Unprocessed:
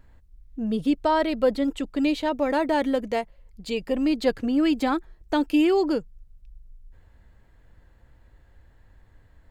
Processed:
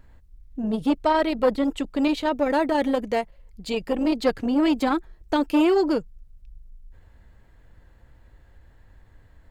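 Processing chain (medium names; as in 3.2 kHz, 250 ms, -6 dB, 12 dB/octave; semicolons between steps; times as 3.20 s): transformer saturation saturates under 480 Hz; trim +2.5 dB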